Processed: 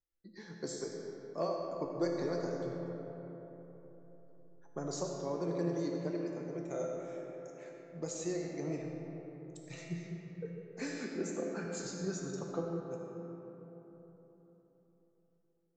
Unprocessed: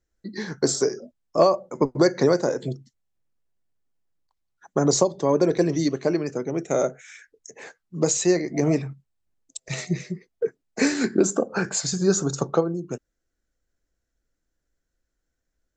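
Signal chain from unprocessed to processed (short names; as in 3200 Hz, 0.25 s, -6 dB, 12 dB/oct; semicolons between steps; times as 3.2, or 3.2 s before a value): high shelf 7400 Hz -5.5 dB; resonator 170 Hz, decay 0.7 s, harmonics all, mix 80%; reverb RT60 3.9 s, pre-delay 35 ms, DRR 1 dB; gain -6.5 dB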